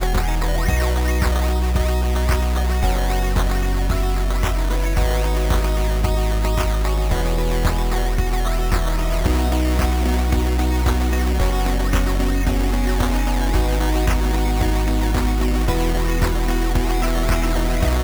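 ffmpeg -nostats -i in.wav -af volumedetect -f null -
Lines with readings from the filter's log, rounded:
mean_volume: -17.3 dB
max_volume: -6.6 dB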